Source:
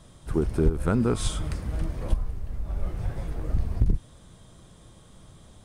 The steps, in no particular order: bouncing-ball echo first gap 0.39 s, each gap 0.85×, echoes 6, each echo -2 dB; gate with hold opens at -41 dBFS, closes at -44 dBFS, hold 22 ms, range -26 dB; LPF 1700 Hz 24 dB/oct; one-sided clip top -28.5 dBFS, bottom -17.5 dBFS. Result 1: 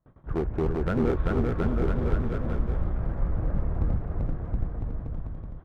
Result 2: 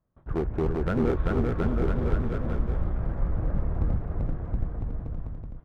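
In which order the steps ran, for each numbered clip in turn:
gate with hold > LPF > one-sided clip > bouncing-ball echo; LPF > one-sided clip > gate with hold > bouncing-ball echo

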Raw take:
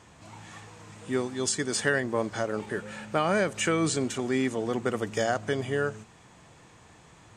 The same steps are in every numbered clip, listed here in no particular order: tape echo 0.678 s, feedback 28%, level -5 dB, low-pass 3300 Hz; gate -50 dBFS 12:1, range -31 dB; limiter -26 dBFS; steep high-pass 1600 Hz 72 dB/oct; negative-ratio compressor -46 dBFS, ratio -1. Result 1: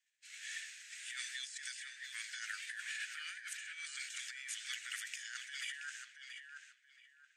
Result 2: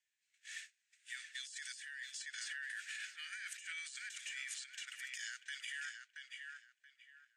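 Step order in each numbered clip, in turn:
steep high-pass > limiter > negative-ratio compressor > gate > tape echo; limiter > steep high-pass > gate > tape echo > negative-ratio compressor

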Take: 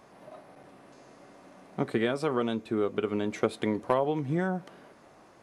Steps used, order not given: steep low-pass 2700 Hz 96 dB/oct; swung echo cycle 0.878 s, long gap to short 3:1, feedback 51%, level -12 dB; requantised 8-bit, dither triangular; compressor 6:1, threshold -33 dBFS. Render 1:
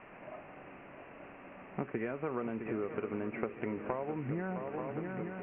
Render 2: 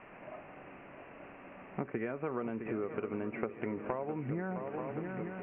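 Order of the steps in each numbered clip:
swung echo > compressor > requantised > steep low-pass; swung echo > requantised > compressor > steep low-pass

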